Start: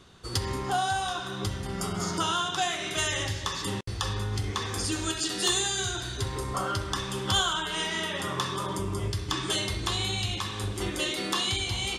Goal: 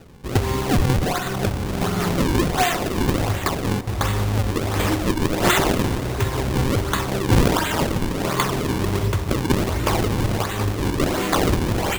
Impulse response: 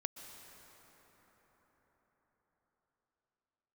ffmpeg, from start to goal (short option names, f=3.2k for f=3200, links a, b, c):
-filter_complex "[0:a]acrusher=samples=39:mix=1:aa=0.000001:lfo=1:lforange=62.4:lforate=1.4,asplit=2[a][b];[b]equalizer=f=1.5k:w=1.5:g=-4[c];[1:a]atrim=start_sample=2205[d];[c][d]afir=irnorm=-1:irlink=0,volume=-1.5dB[e];[a][e]amix=inputs=2:normalize=0,volume=5dB"